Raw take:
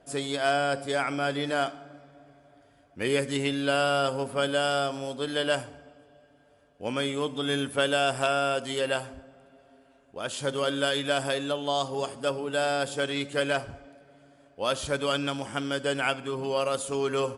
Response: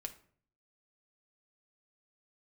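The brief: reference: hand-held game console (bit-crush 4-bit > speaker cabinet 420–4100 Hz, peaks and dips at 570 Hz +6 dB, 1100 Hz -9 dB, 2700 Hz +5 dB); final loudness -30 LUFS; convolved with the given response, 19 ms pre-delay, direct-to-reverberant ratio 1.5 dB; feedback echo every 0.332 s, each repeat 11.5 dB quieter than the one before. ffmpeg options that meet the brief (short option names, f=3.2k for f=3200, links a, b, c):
-filter_complex "[0:a]aecho=1:1:332|664|996:0.266|0.0718|0.0194,asplit=2[a][b];[1:a]atrim=start_sample=2205,adelay=19[c];[b][c]afir=irnorm=-1:irlink=0,volume=1.5dB[d];[a][d]amix=inputs=2:normalize=0,acrusher=bits=3:mix=0:aa=0.000001,highpass=420,equalizer=f=570:t=q:w=4:g=6,equalizer=f=1.1k:t=q:w=4:g=-9,equalizer=f=2.7k:t=q:w=4:g=5,lowpass=f=4.1k:w=0.5412,lowpass=f=4.1k:w=1.3066,volume=-6dB"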